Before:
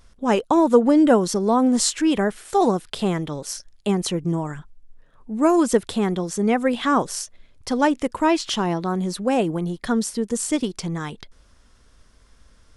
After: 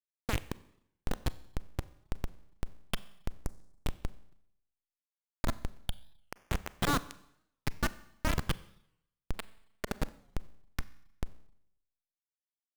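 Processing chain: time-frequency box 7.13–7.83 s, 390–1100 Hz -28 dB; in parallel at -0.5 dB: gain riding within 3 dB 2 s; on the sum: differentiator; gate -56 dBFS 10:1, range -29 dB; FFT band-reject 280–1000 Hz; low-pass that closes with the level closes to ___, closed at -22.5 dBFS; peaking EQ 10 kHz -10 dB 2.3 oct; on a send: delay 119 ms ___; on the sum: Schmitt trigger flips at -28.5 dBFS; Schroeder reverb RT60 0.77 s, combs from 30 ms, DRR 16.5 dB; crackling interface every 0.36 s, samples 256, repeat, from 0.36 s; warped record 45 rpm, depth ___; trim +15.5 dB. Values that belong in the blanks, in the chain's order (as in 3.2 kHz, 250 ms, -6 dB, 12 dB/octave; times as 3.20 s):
2.3 kHz, -12.5 dB, 160 cents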